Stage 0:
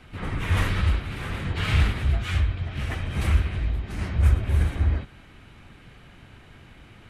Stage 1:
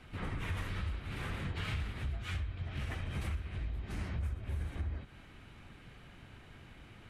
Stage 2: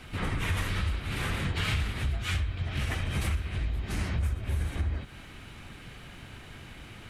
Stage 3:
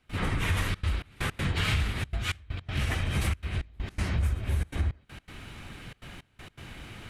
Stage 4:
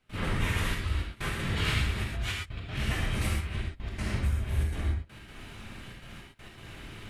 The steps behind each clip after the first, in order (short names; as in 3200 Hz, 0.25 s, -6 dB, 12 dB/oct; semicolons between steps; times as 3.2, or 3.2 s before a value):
compressor 6:1, threshold -29 dBFS, peak gain reduction 15 dB; gain -5.5 dB
high shelf 3400 Hz +7.5 dB; gain +7.5 dB
step gate ".xxxxxxx.xx..x" 162 bpm -24 dB; gain +2 dB
non-linear reverb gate 0.15 s flat, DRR -2 dB; gain -4.5 dB